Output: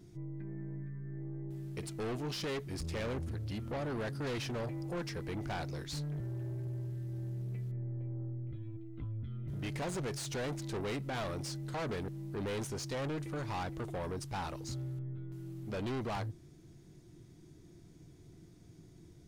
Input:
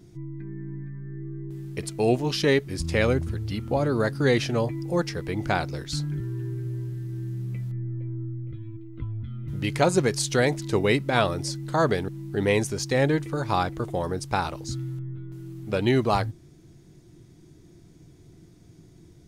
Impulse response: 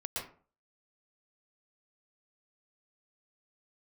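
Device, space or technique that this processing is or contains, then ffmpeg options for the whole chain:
saturation between pre-emphasis and de-emphasis: -af "highshelf=f=7900:g=11,asoftclip=type=tanh:threshold=0.0335,highshelf=f=7900:g=-11,volume=0.562"

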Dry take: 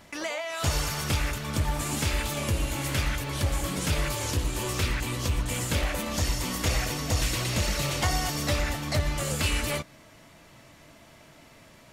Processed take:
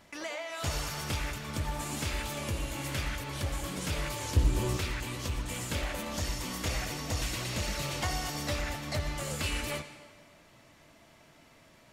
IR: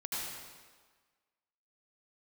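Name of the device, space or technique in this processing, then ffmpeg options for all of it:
filtered reverb send: -filter_complex "[0:a]asettb=1/sr,asplit=3[s0][s1][s2];[s0]atrim=end=4.364[s3];[s1]atrim=start=4.36:end=4.77,asetpts=PTS-STARTPTS,afade=t=in:d=0.004:c=qsin,afade=t=out:st=0.406:d=0.004:c=qsin,lowshelf=f=380:g=11.5[s4];[s2]atrim=start=4.766[s5];[s3][s4]acrossfade=d=0.004:c1=hsin:c2=qsin[s6];[s6][s5]acrossfade=d=0.004:c1=qsin:c2=hsin,asplit=2[s7][s8];[s8]highpass=170,lowpass=8300[s9];[1:a]atrim=start_sample=2205[s10];[s9][s10]afir=irnorm=-1:irlink=0,volume=0.266[s11];[s7][s11]amix=inputs=2:normalize=0,volume=0.447"

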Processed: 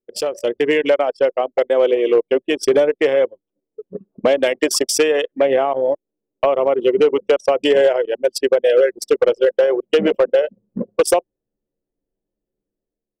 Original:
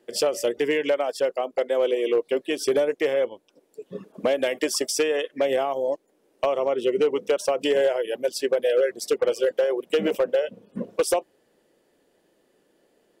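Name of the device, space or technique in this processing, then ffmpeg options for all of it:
voice memo with heavy noise removal: -filter_complex "[0:a]asettb=1/sr,asplit=3[s0][s1][s2];[s0]atrim=end=5.374[s3];[s1]atrim=start=5.37:end=6.81,asetpts=PTS-STARTPTS,afade=t=in:d=0.004:c=qsin,afade=t=out:st=1.436:d=0.004:c=qsin,acrossover=split=3400[s4][s5];[s5]acompressor=threshold=0.00126:ratio=4:attack=1:release=60[s6];[s4][s6]amix=inputs=2:normalize=0[s7];[s2]atrim=start=6.806[s8];[s3][s7]acrossfade=d=0.004:c1=hsin:c2=qsin[s9];[s9][s8]acrossfade=d=0.004:c1=qsin:c2=hsin,anlmdn=63.1,dynaudnorm=f=110:g=9:m=2.37"

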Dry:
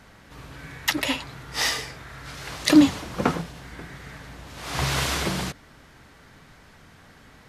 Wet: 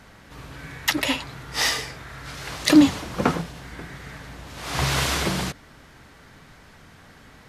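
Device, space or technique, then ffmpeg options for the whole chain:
parallel distortion: -filter_complex "[0:a]asplit=2[s0][s1];[s1]asoftclip=type=hard:threshold=0.141,volume=0.251[s2];[s0][s2]amix=inputs=2:normalize=0"

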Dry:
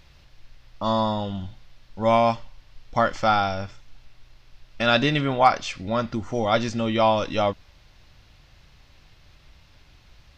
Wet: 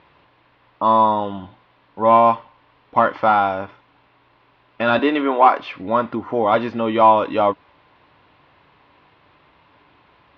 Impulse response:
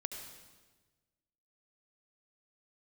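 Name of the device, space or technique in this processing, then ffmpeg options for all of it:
overdrive pedal into a guitar cabinet: -filter_complex "[0:a]asplit=2[s0][s1];[s1]highpass=f=720:p=1,volume=5.01,asoftclip=type=tanh:threshold=0.668[s2];[s0][s2]amix=inputs=2:normalize=0,lowpass=f=1100:p=1,volume=0.501,highpass=100,equalizer=f=290:t=q:w=4:g=7,equalizer=f=430:t=q:w=4:g=5,equalizer=f=1000:t=q:w=4:g=9,lowpass=f=3700:w=0.5412,lowpass=f=3700:w=1.3066,asettb=1/sr,asplit=3[s3][s4][s5];[s3]atrim=end=4.994[s6];[s4]atrim=start=4.99:end=5.59,asetpts=PTS-STARTPTS,afade=t=in:d=0.004:c=qsin,afade=t=out:st=0.596:d=0.004:c=qsin,highpass=f=260:w=0.5412,highpass=f=260:w=1.3066[s7];[s5]atrim=start=5.586[s8];[s6][s7]acrossfade=d=0.004:c1=hsin:c2=qsin[s9];[s9][s8]acrossfade=d=0.004:c1=qsin:c2=hsin"

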